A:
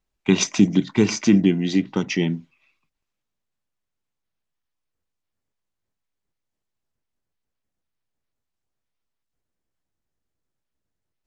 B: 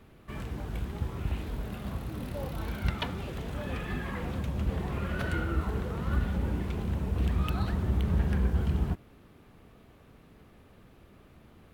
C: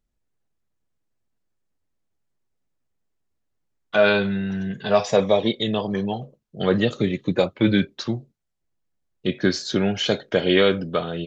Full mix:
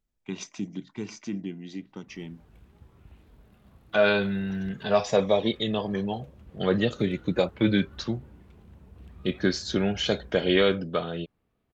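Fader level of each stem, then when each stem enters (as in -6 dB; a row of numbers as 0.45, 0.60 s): -17.5, -20.0, -4.0 dB; 0.00, 1.80, 0.00 s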